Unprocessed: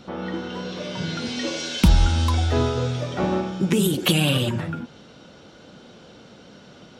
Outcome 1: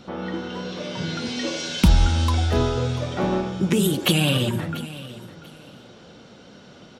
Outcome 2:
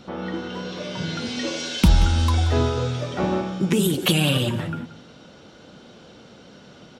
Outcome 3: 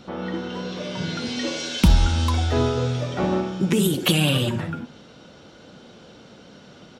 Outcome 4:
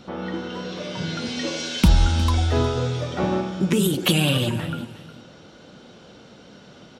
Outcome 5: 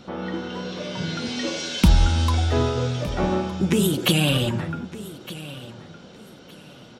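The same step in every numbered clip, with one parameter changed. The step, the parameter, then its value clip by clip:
repeating echo, delay time: 690, 180, 65, 359, 1,213 milliseconds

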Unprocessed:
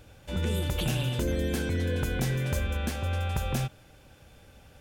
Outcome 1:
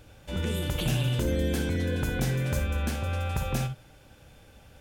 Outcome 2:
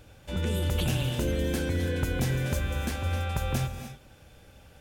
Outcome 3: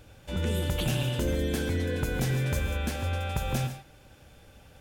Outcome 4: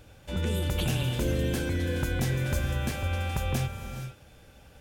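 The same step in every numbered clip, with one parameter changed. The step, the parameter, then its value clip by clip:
reverb whose tail is shaped and stops, gate: 80, 320, 170, 490 milliseconds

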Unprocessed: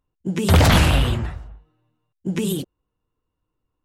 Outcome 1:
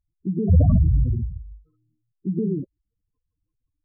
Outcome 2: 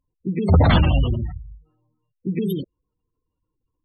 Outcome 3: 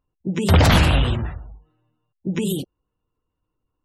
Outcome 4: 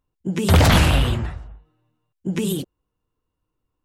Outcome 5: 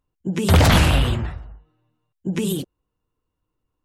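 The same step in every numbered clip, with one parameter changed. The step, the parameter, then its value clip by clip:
gate on every frequency bin, under each frame's peak: −10, −20, −35, −60, −50 decibels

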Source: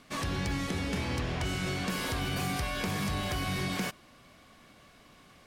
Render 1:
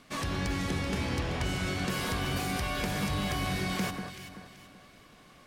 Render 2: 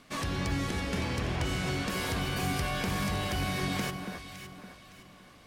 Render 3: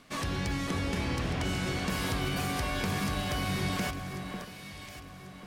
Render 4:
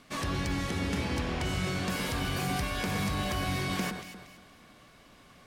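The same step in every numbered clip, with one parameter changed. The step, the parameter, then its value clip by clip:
delay that swaps between a low-pass and a high-pass, delay time: 191, 281, 546, 117 milliseconds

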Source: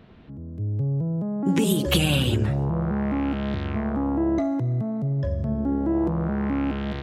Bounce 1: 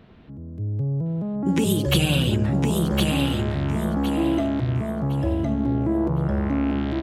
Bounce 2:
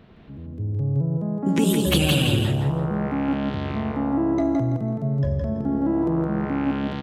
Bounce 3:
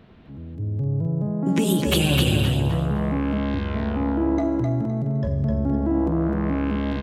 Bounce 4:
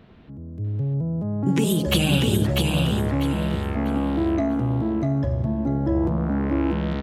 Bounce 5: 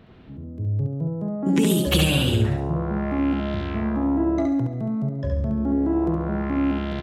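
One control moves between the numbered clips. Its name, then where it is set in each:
repeating echo, delay time: 1,061, 166, 257, 645, 69 milliseconds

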